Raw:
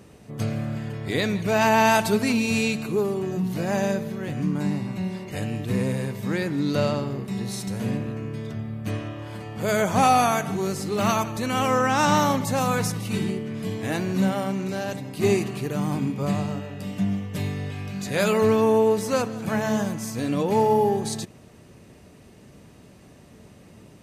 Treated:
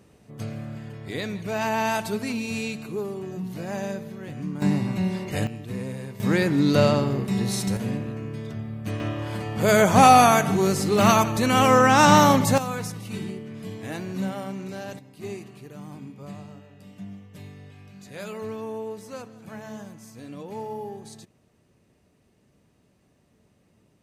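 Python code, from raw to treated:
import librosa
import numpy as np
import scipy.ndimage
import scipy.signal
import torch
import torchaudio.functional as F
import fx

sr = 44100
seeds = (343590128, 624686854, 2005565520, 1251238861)

y = fx.gain(x, sr, db=fx.steps((0.0, -6.5), (4.62, 3.5), (5.47, -7.5), (6.2, 4.5), (7.77, -1.5), (9.0, 5.0), (12.58, -6.5), (14.99, -14.5)))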